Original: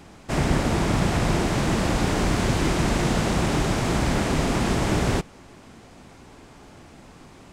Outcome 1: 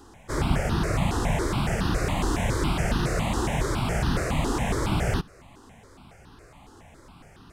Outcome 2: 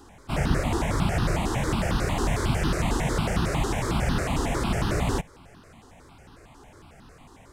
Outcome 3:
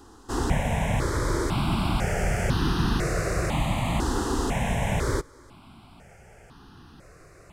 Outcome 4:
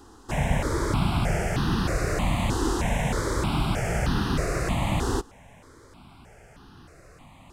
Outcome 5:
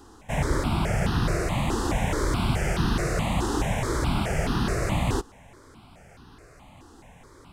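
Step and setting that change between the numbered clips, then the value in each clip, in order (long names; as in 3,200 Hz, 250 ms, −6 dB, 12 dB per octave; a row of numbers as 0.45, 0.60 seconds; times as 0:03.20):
step-sequenced phaser, speed: 7.2, 11, 2, 3.2, 4.7 Hertz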